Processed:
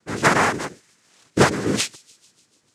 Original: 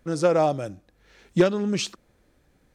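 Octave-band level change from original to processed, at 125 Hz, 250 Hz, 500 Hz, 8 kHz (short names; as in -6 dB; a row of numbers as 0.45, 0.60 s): +3.5, +1.0, -1.5, +9.5 dB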